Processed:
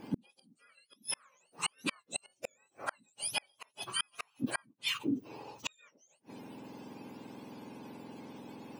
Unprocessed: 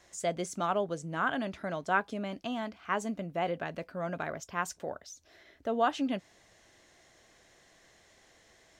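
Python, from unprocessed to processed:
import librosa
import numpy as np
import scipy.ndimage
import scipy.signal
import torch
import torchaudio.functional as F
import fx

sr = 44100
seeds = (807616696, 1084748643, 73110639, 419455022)

y = fx.octave_mirror(x, sr, pivot_hz=1300.0)
y = fx.gate_flip(y, sr, shuts_db=-31.0, range_db=-41)
y = F.gain(torch.from_numpy(y), 11.0).numpy()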